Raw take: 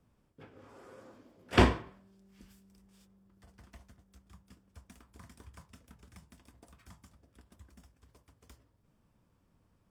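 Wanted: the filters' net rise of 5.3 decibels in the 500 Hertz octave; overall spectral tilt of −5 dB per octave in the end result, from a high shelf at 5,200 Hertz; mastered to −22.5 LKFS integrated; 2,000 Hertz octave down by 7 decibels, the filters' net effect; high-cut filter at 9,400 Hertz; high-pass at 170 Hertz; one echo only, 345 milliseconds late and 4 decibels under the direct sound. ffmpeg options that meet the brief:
ffmpeg -i in.wav -af "highpass=170,lowpass=9400,equalizer=frequency=500:width_type=o:gain=8,equalizer=frequency=2000:width_type=o:gain=-8.5,highshelf=frequency=5200:gain=-8,aecho=1:1:345:0.631,volume=5dB" out.wav

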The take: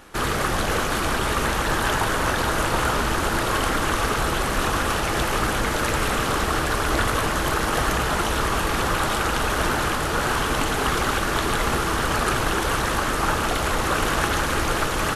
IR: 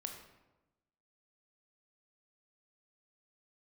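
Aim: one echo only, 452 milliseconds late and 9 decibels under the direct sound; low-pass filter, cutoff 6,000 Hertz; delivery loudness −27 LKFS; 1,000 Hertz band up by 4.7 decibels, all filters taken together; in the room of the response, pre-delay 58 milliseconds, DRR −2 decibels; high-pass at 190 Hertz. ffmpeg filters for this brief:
-filter_complex "[0:a]highpass=190,lowpass=6000,equalizer=frequency=1000:width_type=o:gain=6,aecho=1:1:452:0.355,asplit=2[link_01][link_02];[1:a]atrim=start_sample=2205,adelay=58[link_03];[link_02][link_03]afir=irnorm=-1:irlink=0,volume=4dB[link_04];[link_01][link_04]amix=inputs=2:normalize=0,volume=-11dB"

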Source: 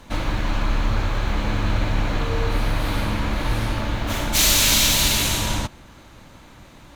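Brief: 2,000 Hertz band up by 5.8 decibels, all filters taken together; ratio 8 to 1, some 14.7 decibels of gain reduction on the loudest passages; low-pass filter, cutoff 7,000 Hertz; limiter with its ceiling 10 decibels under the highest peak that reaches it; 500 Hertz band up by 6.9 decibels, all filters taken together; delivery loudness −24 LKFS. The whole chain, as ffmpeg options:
ffmpeg -i in.wav -af "lowpass=7000,equalizer=frequency=500:width_type=o:gain=8,equalizer=frequency=2000:width_type=o:gain=7,acompressor=threshold=-29dB:ratio=8,volume=14.5dB,alimiter=limit=-14dB:level=0:latency=1" out.wav

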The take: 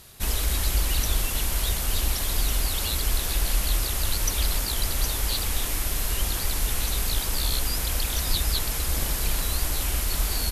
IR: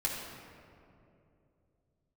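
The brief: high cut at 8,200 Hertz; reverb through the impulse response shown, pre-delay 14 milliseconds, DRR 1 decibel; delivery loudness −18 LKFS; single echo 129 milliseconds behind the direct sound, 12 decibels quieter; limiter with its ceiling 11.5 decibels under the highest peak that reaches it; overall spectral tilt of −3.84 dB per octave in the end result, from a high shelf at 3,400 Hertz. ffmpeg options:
-filter_complex "[0:a]lowpass=8200,highshelf=frequency=3400:gain=-3,alimiter=limit=-23.5dB:level=0:latency=1,aecho=1:1:129:0.251,asplit=2[link_01][link_02];[1:a]atrim=start_sample=2205,adelay=14[link_03];[link_02][link_03]afir=irnorm=-1:irlink=0,volume=-6dB[link_04];[link_01][link_04]amix=inputs=2:normalize=0,volume=13dB"

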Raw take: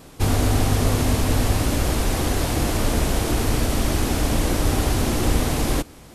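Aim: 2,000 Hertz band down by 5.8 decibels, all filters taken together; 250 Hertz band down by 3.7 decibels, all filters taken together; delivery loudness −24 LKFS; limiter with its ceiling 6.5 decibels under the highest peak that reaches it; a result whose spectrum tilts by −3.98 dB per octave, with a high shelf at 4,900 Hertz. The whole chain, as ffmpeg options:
ffmpeg -i in.wav -af "equalizer=frequency=250:width_type=o:gain=-4.5,equalizer=frequency=2000:width_type=o:gain=-8.5,highshelf=frequency=4900:gain=5,volume=1dB,alimiter=limit=-13dB:level=0:latency=1" out.wav

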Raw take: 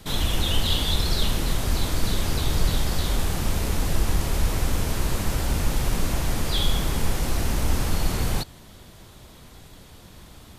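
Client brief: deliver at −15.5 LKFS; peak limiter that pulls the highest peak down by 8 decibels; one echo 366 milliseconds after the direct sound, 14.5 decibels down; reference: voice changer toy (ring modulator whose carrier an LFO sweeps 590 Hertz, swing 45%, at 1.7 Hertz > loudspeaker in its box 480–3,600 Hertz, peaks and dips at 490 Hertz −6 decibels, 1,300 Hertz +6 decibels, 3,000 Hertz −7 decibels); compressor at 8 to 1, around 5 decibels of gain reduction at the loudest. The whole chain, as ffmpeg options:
ffmpeg -i in.wav -af "acompressor=threshold=-20dB:ratio=8,alimiter=limit=-21dB:level=0:latency=1,aecho=1:1:366:0.188,aeval=exprs='val(0)*sin(2*PI*590*n/s+590*0.45/1.7*sin(2*PI*1.7*n/s))':channel_layout=same,highpass=480,equalizer=frequency=490:width_type=q:width=4:gain=-6,equalizer=frequency=1300:width_type=q:width=4:gain=6,equalizer=frequency=3000:width_type=q:width=4:gain=-7,lowpass=frequency=3600:width=0.5412,lowpass=frequency=3600:width=1.3066,volume=18.5dB" out.wav

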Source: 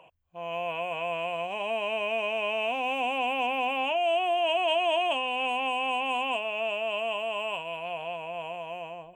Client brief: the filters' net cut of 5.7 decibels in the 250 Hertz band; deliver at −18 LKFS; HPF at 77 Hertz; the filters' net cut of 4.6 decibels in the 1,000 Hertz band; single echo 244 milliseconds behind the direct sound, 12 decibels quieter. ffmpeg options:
ffmpeg -i in.wav -af "highpass=77,equalizer=frequency=250:width_type=o:gain=-6.5,equalizer=frequency=1000:width_type=o:gain=-6.5,aecho=1:1:244:0.251,volume=12.5dB" out.wav

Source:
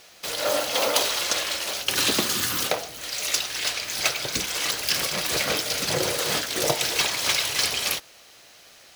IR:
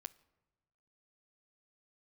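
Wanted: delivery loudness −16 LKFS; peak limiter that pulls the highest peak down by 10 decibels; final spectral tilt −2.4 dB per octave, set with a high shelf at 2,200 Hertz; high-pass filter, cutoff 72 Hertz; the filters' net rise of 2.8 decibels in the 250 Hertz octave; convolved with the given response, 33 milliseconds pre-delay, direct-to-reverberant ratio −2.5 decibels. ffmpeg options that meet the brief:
-filter_complex "[0:a]highpass=72,equalizer=frequency=250:width_type=o:gain=4,highshelf=frequency=2200:gain=-4.5,alimiter=limit=-16.5dB:level=0:latency=1,asplit=2[link_01][link_02];[1:a]atrim=start_sample=2205,adelay=33[link_03];[link_02][link_03]afir=irnorm=-1:irlink=0,volume=7.5dB[link_04];[link_01][link_04]amix=inputs=2:normalize=0,volume=7.5dB"

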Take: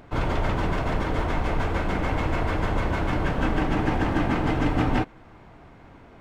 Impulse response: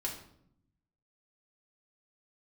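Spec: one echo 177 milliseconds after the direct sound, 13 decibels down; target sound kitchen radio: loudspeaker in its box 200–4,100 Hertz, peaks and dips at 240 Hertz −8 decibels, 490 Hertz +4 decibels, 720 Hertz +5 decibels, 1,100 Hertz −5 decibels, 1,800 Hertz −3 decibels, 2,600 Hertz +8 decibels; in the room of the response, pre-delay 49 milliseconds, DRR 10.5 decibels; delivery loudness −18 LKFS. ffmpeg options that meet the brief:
-filter_complex "[0:a]aecho=1:1:177:0.224,asplit=2[link_01][link_02];[1:a]atrim=start_sample=2205,adelay=49[link_03];[link_02][link_03]afir=irnorm=-1:irlink=0,volume=-12dB[link_04];[link_01][link_04]amix=inputs=2:normalize=0,highpass=200,equalizer=frequency=240:width_type=q:width=4:gain=-8,equalizer=frequency=490:width_type=q:width=4:gain=4,equalizer=frequency=720:width_type=q:width=4:gain=5,equalizer=frequency=1100:width_type=q:width=4:gain=-5,equalizer=frequency=1800:width_type=q:width=4:gain=-3,equalizer=frequency=2600:width_type=q:width=4:gain=8,lowpass=frequency=4100:width=0.5412,lowpass=frequency=4100:width=1.3066,volume=8.5dB"

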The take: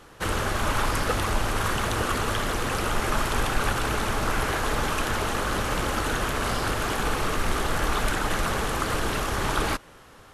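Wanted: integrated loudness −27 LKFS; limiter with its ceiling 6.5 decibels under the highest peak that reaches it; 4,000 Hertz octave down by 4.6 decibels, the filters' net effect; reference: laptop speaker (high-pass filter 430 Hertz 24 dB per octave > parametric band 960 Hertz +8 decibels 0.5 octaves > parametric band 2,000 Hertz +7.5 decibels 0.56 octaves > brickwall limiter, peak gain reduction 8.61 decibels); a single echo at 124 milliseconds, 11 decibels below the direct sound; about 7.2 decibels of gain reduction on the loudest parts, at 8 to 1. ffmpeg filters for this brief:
ffmpeg -i in.wav -af "equalizer=frequency=4000:width_type=o:gain=-8,acompressor=threshold=-26dB:ratio=8,alimiter=limit=-22.5dB:level=0:latency=1,highpass=frequency=430:width=0.5412,highpass=frequency=430:width=1.3066,equalizer=frequency=960:width_type=o:width=0.5:gain=8,equalizer=frequency=2000:width_type=o:width=0.56:gain=7.5,aecho=1:1:124:0.282,volume=8dB,alimiter=limit=-18.5dB:level=0:latency=1" out.wav

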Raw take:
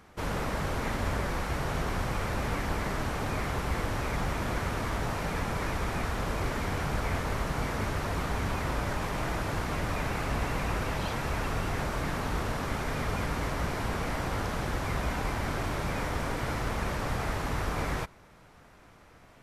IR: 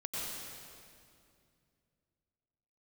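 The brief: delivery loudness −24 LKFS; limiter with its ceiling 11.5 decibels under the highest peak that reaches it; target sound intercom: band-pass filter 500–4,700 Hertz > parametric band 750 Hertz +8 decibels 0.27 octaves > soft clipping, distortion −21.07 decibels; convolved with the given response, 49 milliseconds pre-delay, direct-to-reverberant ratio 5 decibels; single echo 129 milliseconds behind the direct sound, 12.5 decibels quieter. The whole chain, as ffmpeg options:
-filter_complex "[0:a]alimiter=level_in=5dB:limit=-24dB:level=0:latency=1,volume=-5dB,aecho=1:1:129:0.237,asplit=2[link_01][link_02];[1:a]atrim=start_sample=2205,adelay=49[link_03];[link_02][link_03]afir=irnorm=-1:irlink=0,volume=-8dB[link_04];[link_01][link_04]amix=inputs=2:normalize=0,highpass=500,lowpass=4700,equalizer=frequency=750:width_type=o:width=0.27:gain=8,asoftclip=threshold=-30.5dB,volume=15.5dB"

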